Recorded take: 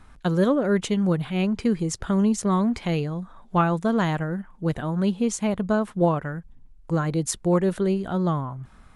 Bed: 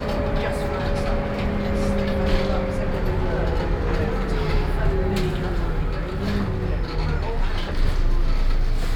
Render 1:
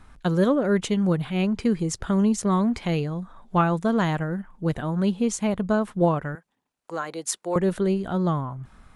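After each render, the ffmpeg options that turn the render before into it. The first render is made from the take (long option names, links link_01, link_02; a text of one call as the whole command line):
ffmpeg -i in.wav -filter_complex "[0:a]asettb=1/sr,asplit=3[link_01][link_02][link_03];[link_01]atrim=end=6.354[link_04];[link_02]atrim=start=6.35:end=7.56,asetpts=PTS-STARTPTS,afade=type=in:duration=0.004:curve=qsin,afade=type=out:start_time=1.206:duration=0.004:curve=qsin,highpass=530[link_05];[link_03]atrim=start=7.556[link_06];[link_04][link_05]acrossfade=duration=0.004:curve1=hsin:curve2=qsin[link_07];[link_07][link_06]acrossfade=duration=0.004:curve1=qsin:curve2=hsin" out.wav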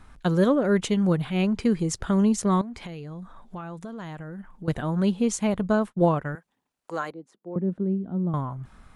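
ffmpeg -i in.wav -filter_complex "[0:a]asettb=1/sr,asplit=3[link_01][link_02][link_03];[link_01]atrim=end=2.614[link_04];[link_02]atrim=start=2.61:end=4.68,asetpts=PTS-STARTPTS,afade=type=in:duration=0.004:curve=qsin,afade=type=out:start_time=2.066:duration=0.004:curve=qsin,acompressor=threshold=-34dB:ratio=8:attack=3.2:release=140:knee=1:detection=peak[link_05];[link_03]atrim=start=4.676[link_06];[link_04][link_05]acrossfade=duration=0.004:curve1=hsin:curve2=qsin[link_07];[link_07][link_06]acrossfade=duration=0.004:curve1=qsin:curve2=hsin,asettb=1/sr,asplit=3[link_08][link_09][link_10];[link_08]atrim=end=5.604[link_11];[link_09]atrim=start=5.6:end=6.28,asetpts=PTS-STARTPTS,afade=type=in:duration=0.004:curve=qsin,afade=type=out:start_time=0.676:duration=0.004:curve=qsin,agate=range=-33dB:threshold=-31dB:ratio=3:release=100:detection=peak[link_12];[link_10]atrim=start=6.276[link_13];[link_11][link_12]acrossfade=duration=0.004:curve1=hsin:curve2=qsin[link_14];[link_14][link_13]acrossfade=duration=0.004:curve1=qsin:curve2=hsin,asettb=1/sr,asplit=3[link_15][link_16][link_17];[link_15]atrim=end=7.114[link_18];[link_16]atrim=start=7.11:end=8.34,asetpts=PTS-STARTPTS,afade=type=in:duration=0.004:curve=qsin,afade=type=out:start_time=1.226:duration=0.004:curve=qsin,bandpass=frequency=220:width_type=q:width=1.8[link_19];[link_17]atrim=start=8.336[link_20];[link_18][link_19]acrossfade=duration=0.004:curve1=hsin:curve2=qsin[link_21];[link_21][link_20]acrossfade=duration=0.004:curve1=qsin:curve2=hsin" out.wav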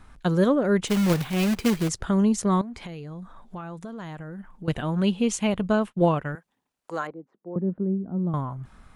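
ffmpeg -i in.wav -filter_complex "[0:a]asettb=1/sr,asplit=3[link_01][link_02][link_03];[link_01]atrim=end=0.874[link_04];[link_02]atrim=start=0.87:end=1.89,asetpts=PTS-STARTPTS,afade=type=in:duration=0.004:curve=qsin,afade=type=out:start_time=1.016:duration=0.004:curve=qsin,acrusher=bits=2:mode=log:mix=0:aa=0.000001[link_05];[link_03]atrim=start=1.886[link_06];[link_04][link_05]acrossfade=duration=0.004:curve1=hsin:curve2=qsin[link_07];[link_07][link_06]acrossfade=duration=0.004:curve1=qsin:curve2=hsin,asettb=1/sr,asplit=3[link_08][link_09][link_10];[link_08]atrim=end=4.644[link_11];[link_09]atrim=start=4.64:end=6.32,asetpts=PTS-STARTPTS,afade=type=in:duration=0.004:curve=qsin,afade=type=out:start_time=1.676:duration=0.004:curve=qsin,equalizer=frequency=2800:width=2.6:gain=8[link_12];[link_10]atrim=start=6.316[link_13];[link_11][link_12]acrossfade=duration=0.004:curve1=hsin:curve2=qsin[link_14];[link_14][link_13]acrossfade=duration=0.004:curve1=qsin:curve2=hsin,asettb=1/sr,asplit=3[link_15][link_16][link_17];[link_15]atrim=end=7.074[link_18];[link_16]atrim=start=7.07:end=8.19,asetpts=PTS-STARTPTS,afade=type=in:duration=0.004:curve=qsin,afade=type=out:start_time=1.116:duration=0.004:curve=qsin,lowpass=1400[link_19];[link_17]atrim=start=8.186[link_20];[link_18][link_19]acrossfade=duration=0.004:curve1=hsin:curve2=qsin[link_21];[link_21][link_20]acrossfade=duration=0.004:curve1=qsin:curve2=hsin" out.wav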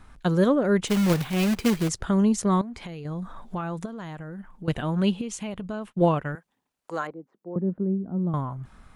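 ffmpeg -i in.wav -filter_complex "[0:a]asettb=1/sr,asplit=3[link_01][link_02][link_03];[link_01]atrim=end=3.054[link_04];[link_02]atrim=start=3.05:end=3.86,asetpts=PTS-STARTPTS,afade=type=in:duration=0.004:curve=qsin,afade=type=out:start_time=0.806:duration=0.004:curve=qsin,acontrast=48[link_05];[link_03]atrim=start=3.856[link_06];[link_04][link_05]acrossfade=duration=0.004:curve1=hsin:curve2=qsin[link_07];[link_07][link_06]acrossfade=duration=0.004:curve1=qsin:curve2=hsin,asettb=1/sr,asplit=3[link_08][link_09][link_10];[link_08]atrim=end=5.214[link_11];[link_09]atrim=start=5.21:end=5.92,asetpts=PTS-STARTPTS,afade=type=in:duration=0.004:curve=qsin,afade=type=out:start_time=0.706:duration=0.004:curve=qsin,acompressor=threshold=-32dB:ratio=3:attack=3.2:release=140:knee=1:detection=peak[link_12];[link_10]atrim=start=5.916[link_13];[link_11][link_12]acrossfade=duration=0.004:curve1=hsin:curve2=qsin[link_14];[link_14][link_13]acrossfade=duration=0.004:curve1=qsin:curve2=hsin" out.wav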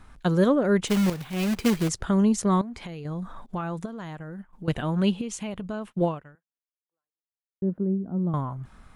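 ffmpeg -i in.wav -filter_complex "[0:a]asettb=1/sr,asplit=3[link_01][link_02][link_03];[link_01]atrim=end=3.464[link_04];[link_02]atrim=start=3.46:end=4.53,asetpts=PTS-STARTPTS,afade=type=in:duration=0.004:curve=qsin,afade=type=out:start_time=1.066:duration=0.004:curve=qsin,agate=range=-33dB:threshold=-38dB:ratio=3:release=100:detection=peak[link_05];[link_03]atrim=start=4.526[link_06];[link_04][link_05]acrossfade=duration=0.004:curve1=hsin:curve2=qsin[link_07];[link_07][link_06]acrossfade=duration=0.004:curve1=qsin:curve2=hsin,asplit=3[link_08][link_09][link_10];[link_08]atrim=end=1.1,asetpts=PTS-STARTPTS,afade=type=out:start_time=1.096:duration=0.004:curve=hsin:silence=0.251189[link_11];[link_09]atrim=start=1.1:end=7.62,asetpts=PTS-STARTPTS,afade=type=in:duration=0.55:silence=0.251189,afade=type=out:start_time=4.88:duration=1.64:curve=exp[link_12];[link_10]atrim=start=7.62,asetpts=PTS-STARTPTS,afade=type=in:duration=0.004:curve=hsin[link_13];[link_11][link_12][link_13]concat=n=3:v=0:a=1" out.wav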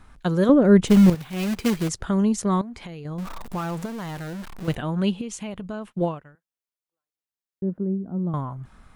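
ffmpeg -i in.wav -filter_complex "[0:a]asettb=1/sr,asplit=3[link_01][link_02][link_03];[link_01]atrim=end=0.494[link_04];[link_02]atrim=start=0.49:end=1.15,asetpts=PTS-STARTPTS,afade=type=in:duration=0.004:curve=qsin,afade=type=out:start_time=0.656:duration=0.004:curve=qsin,lowshelf=frequency=440:gain=11[link_05];[link_03]atrim=start=1.146[link_06];[link_04][link_05]acrossfade=duration=0.004:curve1=hsin:curve2=qsin[link_07];[link_07][link_06]acrossfade=duration=0.004:curve1=qsin:curve2=hsin,asettb=1/sr,asplit=3[link_08][link_09][link_10];[link_08]atrim=end=3.184[link_11];[link_09]atrim=start=3.18:end=4.75,asetpts=PTS-STARTPTS,afade=type=in:duration=0.004:curve=qsin,afade=type=out:start_time=1.566:duration=0.004:curve=qsin,aeval=exprs='val(0)+0.5*0.0224*sgn(val(0))':channel_layout=same[link_12];[link_10]atrim=start=4.746[link_13];[link_11][link_12]acrossfade=duration=0.004:curve1=hsin:curve2=qsin[link_14];[link_14][link_13]acrossfade=duration=0.004:curve1=qsin:curve2=hsin" out.wav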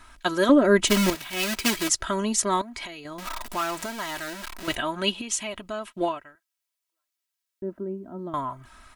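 ffmpeg -i in.wav -af "tiltshelf=frequency=690:gain=-7.5,aecho=1:1:3.1:0.72" out.wav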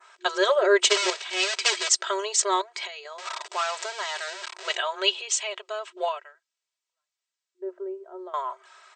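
ffmpeg -i in.wav -af "adynamicequalizer=threshold=0.01:dfrequency=4100:dqfactor=0.8:tfrequency=4100:tqfactor=0.8:attack=5:release=100:ratio=0.375:range=2.5:mode=boostabove:tftype=bell,afftfilt=real='re*between(b*sr/4096,360,8500)':imag='im*between(b*sr/4096,360,8500)':win_size=4096:overlap=0.75" out.wav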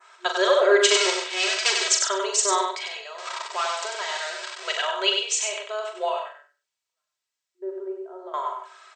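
ffmpeg -i in.wav -filter_complex "[0:a]asplit=2[link_01][link_02];[link_02]adelay=42,volume=-6.5dB[link_03];[link_01][link_03]amix=inputs=2:normalize=0,aecho=1:1:96|192|288:0.596|0.113|0.0215" out.wav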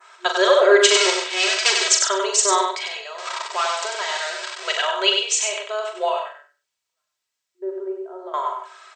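ffmpeg -i in.wav -af "volume=4dB,alimiter=limit=-1dB:level=0:latency=1" out.wav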